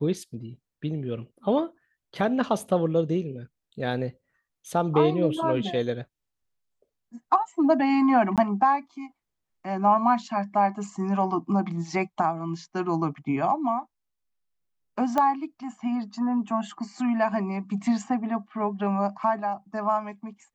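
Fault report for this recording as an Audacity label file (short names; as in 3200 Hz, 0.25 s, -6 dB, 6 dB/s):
8.360000	8.380000	gap 17 ms
15.180000	15.180000	pop -12 dBFS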